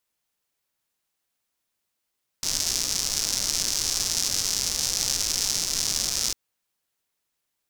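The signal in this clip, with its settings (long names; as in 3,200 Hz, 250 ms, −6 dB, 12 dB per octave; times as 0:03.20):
rain-like ticks over hiss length 3.90 s, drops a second 220, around 5,600 Hz, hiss −12 dB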